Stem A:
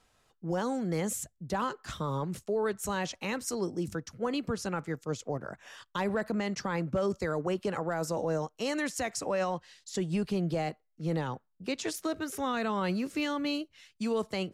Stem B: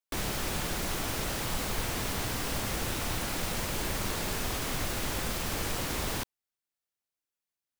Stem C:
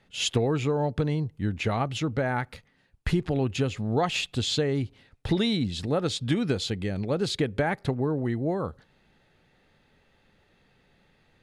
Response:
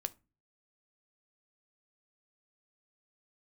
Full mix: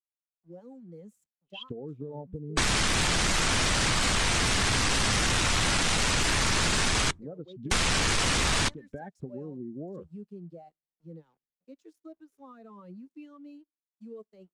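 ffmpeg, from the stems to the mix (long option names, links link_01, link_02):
-filter_complex "[0:a]aeval=exprs='sgn(val(0))*max(abs(val(0))-0.00531,0)':channel_layout=same,volume=-11.5dB,asplit=2[link_01][link_02];[link_02]volume=-11.5dB[link_03];[1:a]lowpass=frequency=9600:width=0.5412,lowpass=frequency=9600:width=1.3066,aeval=exprs='0.126*sin(PI/2*3.98*val(0)/0.126)':channel_layout=same,adelay=2450,volume=2.5dB,asplit=3[link_04][link_05][link_06];[link_04]atrim=end=7.11,asetpts=PTS-STARTPTS,afade=type=out:start_time=7.106:duration=0.004:curve=hsin[link_07];[link_05]atrim=start=7.11:end=7.71,asetpts=PTS-STARTPTS,volume=0[link_08];[link_06]atrim=start=7.71,asetpts=PTS-STARTPTS,afade=type=in:duration=0.004:curve=hsin[link_09];[link_07][link_08][link_09]concat=n=3:v=0:a=1,asplit=2[link_10][link_11];[link_11]volume=-10.5dB[link_12];[2:a]lowpass=4300,afwtdn=0.0158,adelay=1350,volume=-5dB[link_13];[link_01][link_13]amix=inputs=2:normalize=0,equalizer=frequency=110:width=3.4:gain=-13,acompressor=threshold=-32dB:ratio=6,volume=0dB[link_14];[3:a]atrim=start_sample=2205[link_15];[link_03][link_12]amix=inputs=2:normalize=0[link_16];[link_16][link_15]afir=irnorm=-1:irlink=0[link_17];[link_10][link_14][link_17]amix=inputs=3:normalize=0,afftdn=noise_reduction=23:noise_floor=-29,acrossover=split=260|1000[link_18][link_19][link_20];[link_18]acompressor=threshold=-29dB:ratio=4[link_21];[link_19]acompressor=threshold=-40dB:ratio=4[link_22];[link_20]acompressor=threshold=-25dB:ratio=4[link_23];[link_21][link_22][link_23]amix=inputs=3:normalize=0"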